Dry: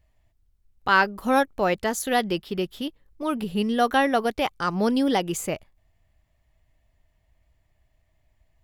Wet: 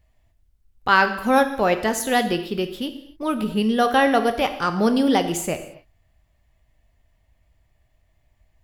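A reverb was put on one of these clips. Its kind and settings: non-linear reverb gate 0.3 s falling, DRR 7.5 dB; gain +2.5 dB

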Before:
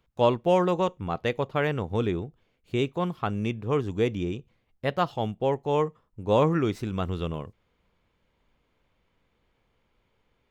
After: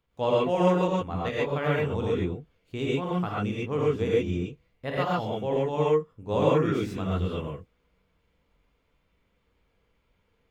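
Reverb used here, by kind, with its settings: non-linear reverb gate 0.16 s rising, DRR -6 dB; gain -7 dB

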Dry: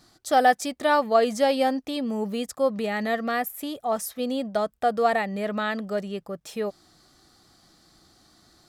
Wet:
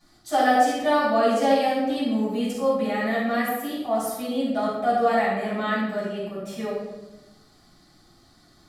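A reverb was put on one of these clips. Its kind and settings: shoebox room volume 450 m³, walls mixed, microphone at 8.2 m; gain -14.5 dB

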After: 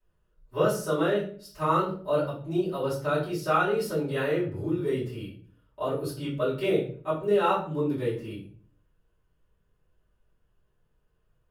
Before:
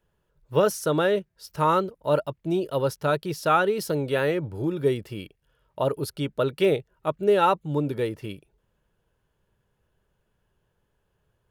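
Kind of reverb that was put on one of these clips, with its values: shoebox room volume 41 m³, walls mixed, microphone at 2.8 m; gain -17 dB

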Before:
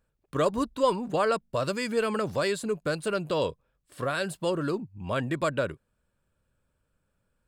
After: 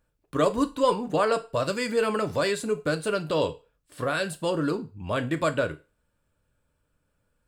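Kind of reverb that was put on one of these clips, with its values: FDN reverb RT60 0.31 s, low-frequency decay 0.7×, high-frequency decay 1×, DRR 7 dB; gain +1.5 dB

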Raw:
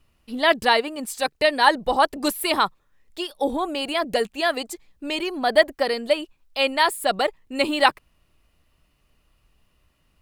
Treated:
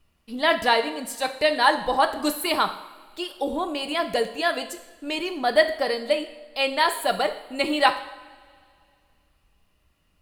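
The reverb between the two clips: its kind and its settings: two-slope reverb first 0.69 s, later 2.4 s, from -17 dB, DRR 6.5 dB; gain -2.5 dB

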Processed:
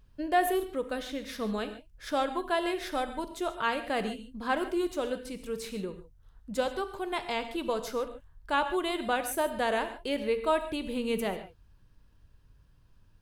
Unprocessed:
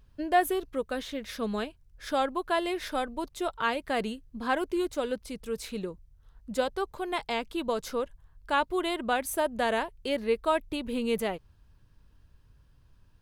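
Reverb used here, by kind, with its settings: non-linear reverb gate 0.17 s flat, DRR 8.5 dB; gain -1.5 dB

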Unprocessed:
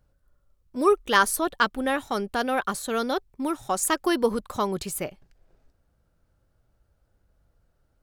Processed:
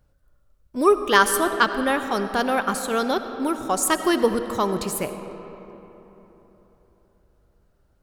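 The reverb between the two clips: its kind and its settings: digital reverb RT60 3.8 s, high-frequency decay 0.5×, pre-delay 40 ms, DRR 9 dB; gain +3 dB

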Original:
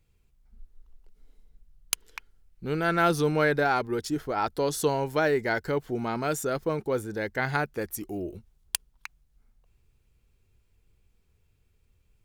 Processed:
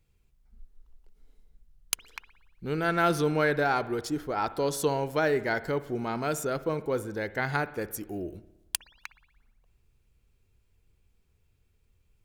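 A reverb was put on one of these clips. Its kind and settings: spring tank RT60 1 s, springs 57 ms, chirp 70 ms, DRR 15 dB; gain -1.5 dB

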